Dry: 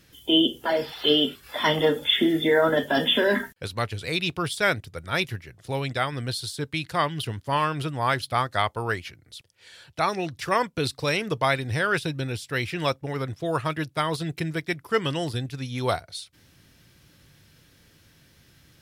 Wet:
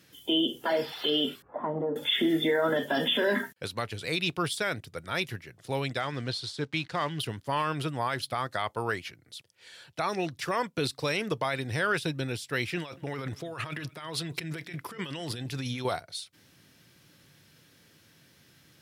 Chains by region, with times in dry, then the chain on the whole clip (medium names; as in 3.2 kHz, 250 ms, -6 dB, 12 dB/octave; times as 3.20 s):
1.42–1.96 s: low-pass 1 kHz 24 dB/octave + compression 5:1, threshold -25 dBFS
6.00–7.19 s: block-companded coder 5-bit + low-pass 5.4 kHz
12.77–15.85 s: dynamic bell 2.4 kHz, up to +6 dB, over -41 dBFS, Q 0.9 + compressor with a negative ratio -34 dBFS + delay 200 ms -22 dB
whole clip: high-pass 130 Hz 12 dB/octave; peak limiter -16 dBFS; trim -1.5 dB